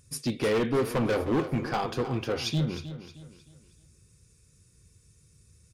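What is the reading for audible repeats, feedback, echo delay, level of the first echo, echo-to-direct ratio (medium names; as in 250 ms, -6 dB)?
3, 37%, 311 ms, -12.5 dB, -12.0 dB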